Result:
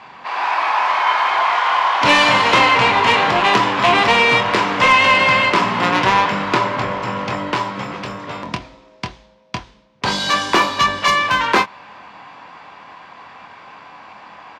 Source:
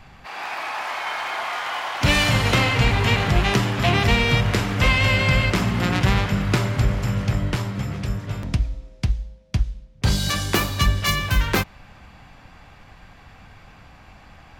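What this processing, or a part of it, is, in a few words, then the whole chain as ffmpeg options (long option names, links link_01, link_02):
intercom: -filter_complex "[0:a]asettb=1/sr,asplit=3[link_01][link_02][link_03];[link_01]atrim=end=6.544[link_04];[link_02]atrim=start=6.54:end=7.28,asetpts=PTS-STARTPTS,afade=type=in:duration=0.004:curve=qsin,afade=type=out:start_time=0.736:duration=0.004:curve=qsin,highshelf=frequency=4200:gain=-5.5[link_05];[link_03]atrim=start=7.276[link_06];[link_04][link_05]acrossfade=duration=0.004:curve1=hsin:curve2=qsin[link_07];[link_07][link_06]acrossfade=duration=0.004:curve1=qsin:curve2=hsin,highpass=320,lowpass=4600,equalizer=frequency=1000:width_type=o:width=0.27:gain=11.5,asoftclip=type=tanh:threshold=-11.5dB,asplit=2[link_08][link_09];[link_09]adelay=24,volume=-8dB[link_10];[link_08][link_10]amix=inputs=2:normalize=0,volume=7.5dB"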